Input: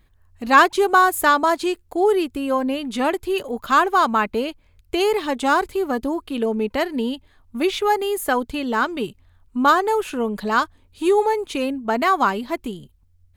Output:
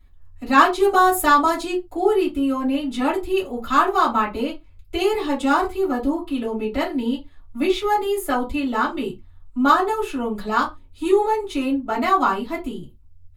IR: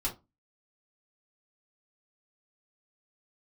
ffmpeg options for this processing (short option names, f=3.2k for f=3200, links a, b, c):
-filter_complex "[0:a]asettb=1/sr,asplit=3[a][b][c];[a]atrim=end=0.834[d];[b]atrim=start=0.83:end=1.63,asetpts=PTS-STARTPTS,afade=t=in:d=0.004:c=qsin,afade=t=out:st=0.796:d=0.004:c=qsin,bass=f=250:g=3,treble=f=4k:g=4[e];[c]atrim=start=1.626[f];[d][e]acrossfade=d=0.004:c1=hsin:c2=qsin[g];[g][f]acrossfade=d=0.004:c1=qsin:c2=hsin[h];[1:a]atrim=start_sample=2205,afade=t=out:st=0.19:d=0.01,atrim=end_sample=8820[i];[h][i]afir=irnorm=-1:irlink=0,volume=-5.5dB"